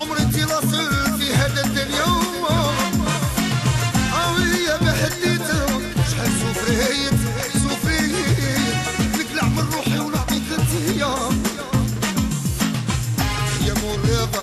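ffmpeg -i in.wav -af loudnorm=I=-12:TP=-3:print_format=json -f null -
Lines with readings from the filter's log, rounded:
"input_i" : "-20.2",
"input_tp" : "-5.9",
"input_lra" : "2.1",
"input_thresh" : "-30.2",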